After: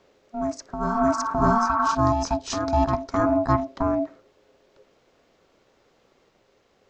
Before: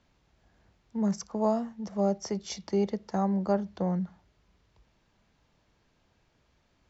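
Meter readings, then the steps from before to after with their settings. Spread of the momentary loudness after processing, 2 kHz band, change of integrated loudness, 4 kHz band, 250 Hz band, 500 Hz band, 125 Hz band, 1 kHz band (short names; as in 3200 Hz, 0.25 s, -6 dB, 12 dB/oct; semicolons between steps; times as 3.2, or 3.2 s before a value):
9 LU, +17.5 dB, +7.0 dB, +6.5 dB, +4.5 dB, +5.5 dB, +6.5 dB, +14.0 dB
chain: ring modulator 470 Hz; spectral repair 1.5–1.92, 770–2800 Hz before; reverse echo 0.611 s -5.5 dB; gain +8.5 dB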